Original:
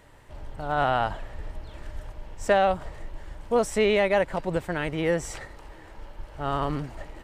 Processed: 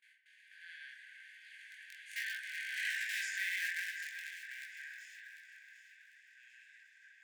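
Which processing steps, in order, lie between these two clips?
spectral levelling over time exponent 0.4; Doppler pass-by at 2.94 s, 46 m/s, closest 7.3 m; reverb removal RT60 0.51 s; gate with hold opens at -46 dBFS; tilt EQ -3 dB/octave; in parallel at -8.5 dB: Schmitt trigger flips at -27 dBFS; on the sum: chorus 1.3 Hz, delay 16.5 ms, depth 6.5 ms; brick-wall FIR high-pass 1.5 kHz; echo whose repeats swap between lows and highs 374 ms, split 2 kHz, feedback 58%, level -6.5 dB; on a send at -4 dB: reverberation RT60 0.90 s, pre-delay 28 ms; on the sum: trim +5.5 dB

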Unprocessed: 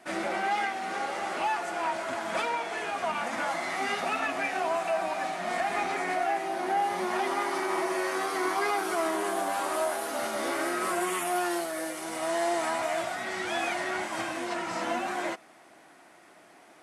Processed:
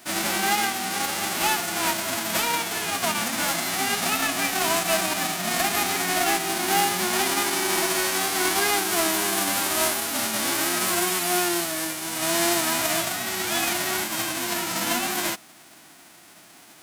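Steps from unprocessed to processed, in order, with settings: formants flattened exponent 0.3; trim +5.5 dB

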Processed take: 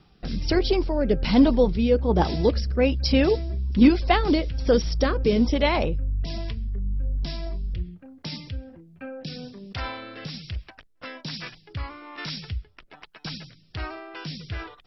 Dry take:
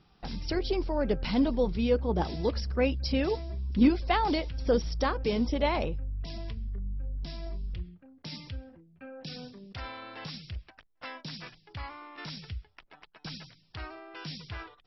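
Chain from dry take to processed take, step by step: rotary cabinet horn 1.2 Hz; trim +9 dB

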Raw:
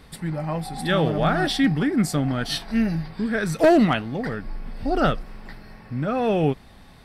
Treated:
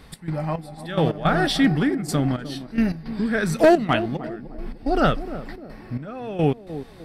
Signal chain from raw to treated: trance gate "x.xx...x.xxxx" 108 bpm -12 dB; on a send: band-passed feedback delay 303 ms, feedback 49%, band-pass 320 Hz, level -11 dB; on the sum: trim +1.5 dB

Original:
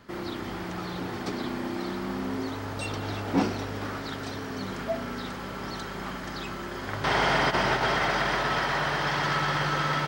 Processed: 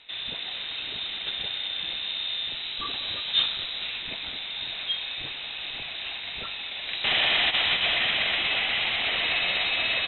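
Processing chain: frequency inversion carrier 3.9 kHz; distance through air 77 m; trim +2 dB

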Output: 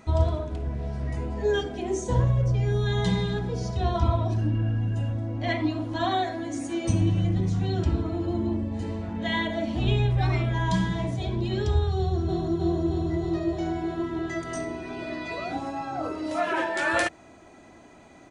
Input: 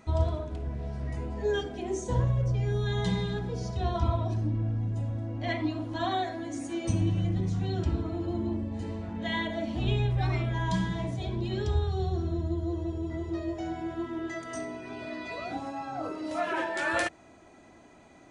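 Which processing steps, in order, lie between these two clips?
4.38–5.13 s: small resonant body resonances 1.6/2.8 kHz, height 16 dB, ringing for 35 ms; 11.97–12.58 s: echo throw 310 ms, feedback 80%, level -2.5 dB; trim +4 dB

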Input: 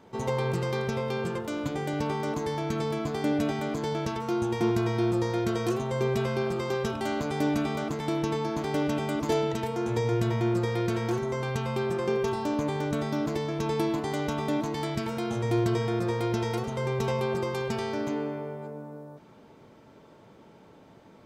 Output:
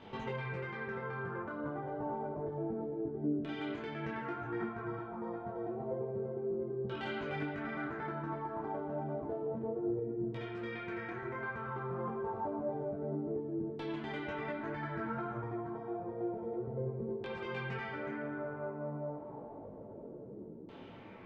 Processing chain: dynamic bell 1.6 kHz, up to +6 dB, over -54 dBFS, Q 2.5; compression 8:1, threshold -40 dBFS, peak gain reduction 18.5 dB; LFO low-pass saw down 0.29 Hz 320–3300 Hz; on a send at -7 dB: reverberation RT60 2.6 s, pre-delay 6 ms; on the sum: detune thickener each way 14 cents; trim +4.5 dB

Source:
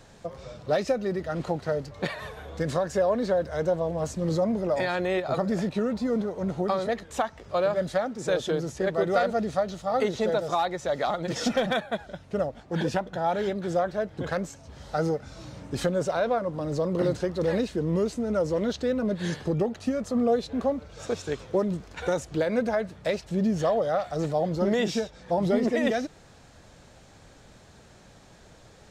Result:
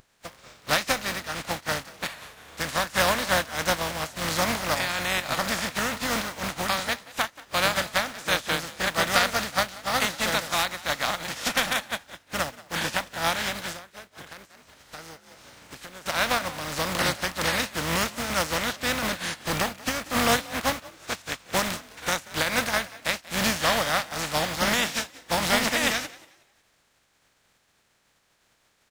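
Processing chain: spectral contrast reduction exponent 0.27; peaking EQ 1.8 kHz +3.5 dB 2.1 oct; frequency-shifting echo 183 ms, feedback 40%, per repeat +42 Hz, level -14 dB; 13.72–16.06 s: compression 12:1, threshold -32 dBFS, peak gain reduction 14.5 dB; dynamic bell 400 Hz, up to -7 dB, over -47 dBFS, Q 4.1; spectral contrast expander 1.5:1

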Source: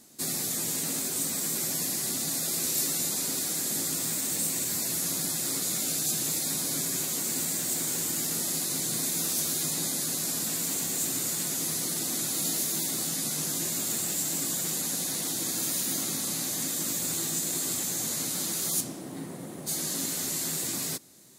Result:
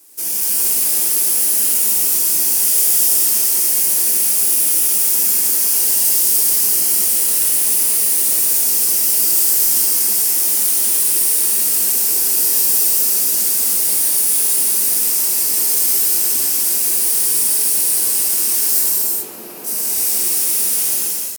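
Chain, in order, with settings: tilt EQ +3 dB/octave; pitch shift +4.5 st; gated-style reverb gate 460 ms flat, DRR -7.5 dB; trim -1.5 dB

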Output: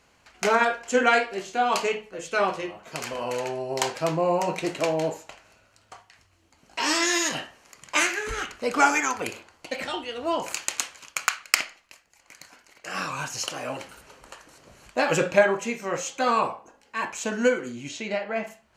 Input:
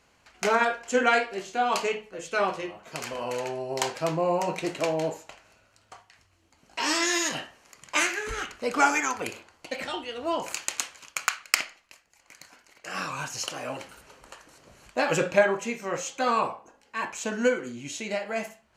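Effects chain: 17.88–18.46 s: low-pass 6.1 kHz -> 2.6 kHz 12 dB/octave; trim +2 dB

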